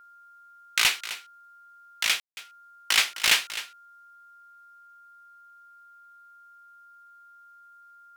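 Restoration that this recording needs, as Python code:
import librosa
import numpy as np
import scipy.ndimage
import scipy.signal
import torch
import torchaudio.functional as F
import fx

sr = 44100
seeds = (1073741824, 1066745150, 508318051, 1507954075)

y = fx.fix_declip(x, sr, threshold_db=-11.5)
y = fx.notch(y, sr, hz=1400.0, q=30.0)
y = fx.fix_ambience(y, sr, seeds[0], print_start_s=5.6, print_end_s=6.1, start_s=2.2, end_s=2.37)
y = fx.fix_echo_inverse(y, sr, delay_ms=259, level_db=-14.5)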